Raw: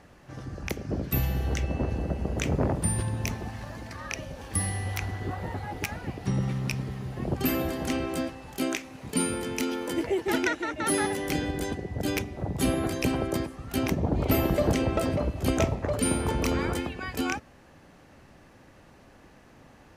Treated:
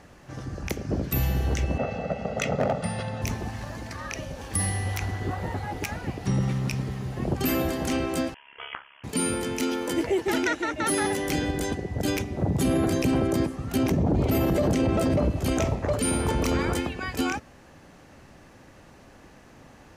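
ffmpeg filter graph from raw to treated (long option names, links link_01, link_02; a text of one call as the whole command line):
ffmpeg -i in.wav -filter_complex "[0:a]asettb=1/sr,asplit=3[link_01][link_02][link_03];[link_01]atrim=end=1.784[link_04];[link_02]atrim=start=1.78:end=3.22,asetpts=PTS-STARTPTS,afade=type=in:duration=0.004:curve=qsin,afade=type=out:start_time=1.436:duration=0.004:curve=qsin,highpass=220,lowpass=4400,aecho=1:1:1.5:0.98,atrim=end_sample=63504,asoftclip=type=hard:threshold=-20dB[link_05];[link_03]atrim=start=3.216[link_06];[link_04][link_05]acrossfade=duration=0.004:curve1=hsin:curve2=qsin[link_07];[link_07][link_06]acrossfade=duration=0.004:curve1=qsin:curve2=hsin,asettb=1/sr,asplit=3[link_08][link_09][link_10];[link_08]atrim=end=8.344[link_11];[link_09]atrim=start=8.34:end=9.04,asetpts=PTS-STARTPTS,afade=type=in:duration=0.004:curve=qsin,afade=type=out:start_time=0.696:duration=0.004:curve=qsin,highpass=970,tremolo=f=69:d=0.857,lowpass=frequency=3100:width_type=q:width=0.5098,lowpass=frequency=3100:width_type=q:width=0.6013,lowpass=frequency=3100:width_type=q:width=0.9,lowpass=frequency=3100:width_type=q:width=2.563,afreqshift=-3600[link_12];[link_10]atrim=start=9.036[link_13];[link_11][link_12]acrossfade=duration=0.004:curve1=hsin:curve2=qsin[link_14];[link_14][link_13]acrossfade=duration=0.004:curve1=qsin:curve2=hsin,asettb=1/sr,asplit=3[link_15][link_16][link_17];[link_15]atrim=end=12.304[link_18];[link_16]atrim=start=12.3:end=15.39,asetpts=PTS-STARTPTS,afade=type=in:duration=0.004:curve=qsin,afade=type=out:start_time=3.086:duration=0.004:curve=qsin,highpass=frequency=160:poles=1,lowshelf=frequency=350:gain=11[link_19];[link_17]atrim=start=15.386[link_20];[link_18][link_19]acrossfade=duration=0.004:curve1=hsin:curve2=qsin[link_21];[link_21][link_20]acrossfade=duration=0.004:curve1=qsin:curve2=hsin,equalizer=frequency=6700:width_type=o:width=0.77:gain=3,alimiter=limit=-18.5dB:level=0:latency=1:release=19,volume=3dB" out.wav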